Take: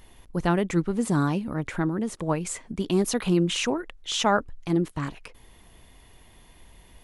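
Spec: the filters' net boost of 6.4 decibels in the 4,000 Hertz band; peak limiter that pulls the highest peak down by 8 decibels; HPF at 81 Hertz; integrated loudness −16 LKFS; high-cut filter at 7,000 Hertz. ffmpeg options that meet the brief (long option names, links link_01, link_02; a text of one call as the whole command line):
ffmpeg -i in.wav -af "highpass=81,lowpass=7000,equalizer=frequency=4000:width_type=o:gain=9,volume=11.5dB,alimiter=limit=-5dB:level=0:latency=1" out.wav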